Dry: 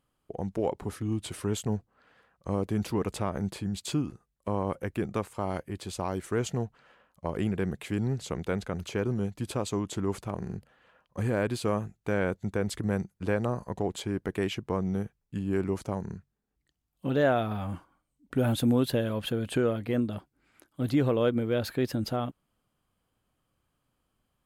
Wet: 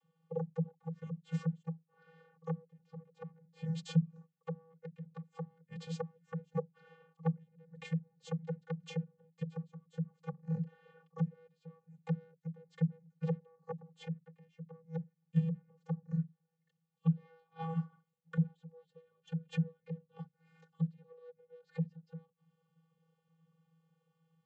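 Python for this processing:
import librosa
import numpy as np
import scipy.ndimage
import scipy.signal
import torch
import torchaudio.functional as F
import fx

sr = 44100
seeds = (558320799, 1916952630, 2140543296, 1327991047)

y = fx.self_delay(x, sr, depth_ms=0.18)
y = fx.gate_flip(y, sr, shuts_db=-22.0, range_db=-34)
y = fx.vocoder(y, sr, bands=32, carrier='square', carrier_hz=163.0)
y = F.gain(torch.from_numpy(y), 5.0).numpy()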